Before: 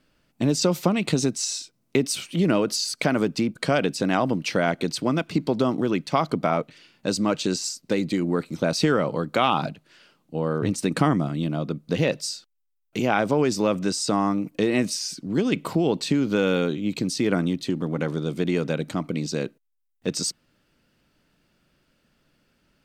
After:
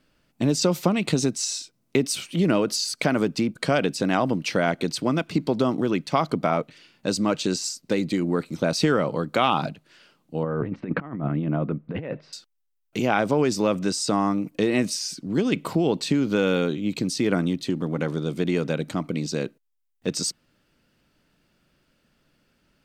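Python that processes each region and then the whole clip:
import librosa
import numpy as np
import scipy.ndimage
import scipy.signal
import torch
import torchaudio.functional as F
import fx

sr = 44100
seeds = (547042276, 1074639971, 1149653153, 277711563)

y = fx.chain(x, sr, fx.lowpass(hz=2200.0, slope=24),
    fx.over_compress(threshold_db=-26.0, ratio=-0.5), at=(10.43, 12.33))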